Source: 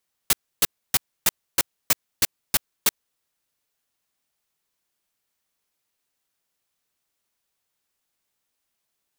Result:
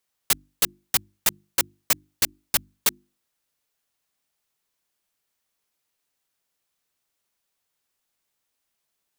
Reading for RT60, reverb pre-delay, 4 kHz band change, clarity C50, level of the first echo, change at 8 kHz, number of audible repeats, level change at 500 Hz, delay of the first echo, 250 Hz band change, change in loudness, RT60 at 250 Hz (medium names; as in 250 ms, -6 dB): no reverb, no reverb, 0.0 dB, no reverb, no echo, 0.0 dB, no echo, 0.0 dB, no echo, -1.0 dB, 0.0 dB, no reverb